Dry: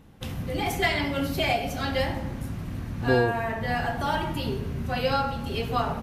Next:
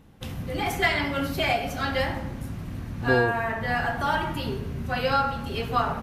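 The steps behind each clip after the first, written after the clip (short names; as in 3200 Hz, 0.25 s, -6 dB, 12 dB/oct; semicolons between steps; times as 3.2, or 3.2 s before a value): dynamic EQ 1400 Hz, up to +6 dB, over -42 dBFS, Q 1.2; gain -1 dB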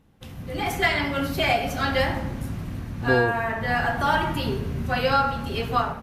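AGC gain up to 11.5 dB; gain -6.5 dB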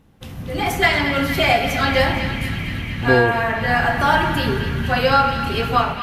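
narrowing echo 0.232 s, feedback 85%, band-pass 2500 Hz, level -8.5 dB; gain +5.5 dB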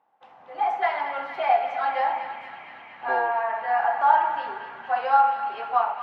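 ladder band-pass 900 Hz, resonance 65%; gain +3.5 dB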